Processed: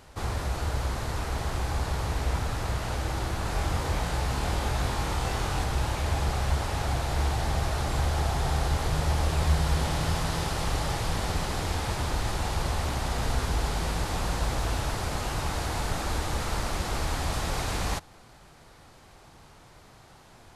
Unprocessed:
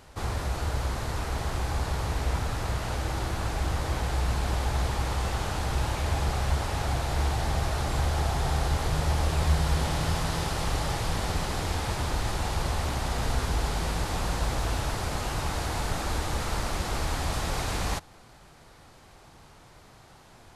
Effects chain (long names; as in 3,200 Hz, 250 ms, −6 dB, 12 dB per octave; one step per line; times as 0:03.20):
0:03.43–0:05.64: flutter between parallel walls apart 4 metres, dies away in 0.26 s